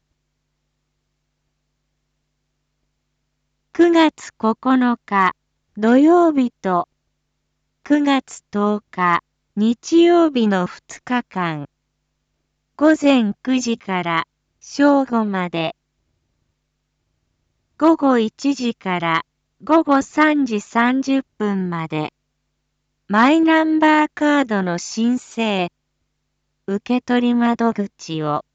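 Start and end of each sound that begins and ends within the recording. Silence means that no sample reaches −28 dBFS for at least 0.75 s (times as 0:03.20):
0:03.75–0:06.84
0:07.86–0:11.65
0:12.79–0:15.71
0:17.80–0:22.08
0:23.10–0:25.68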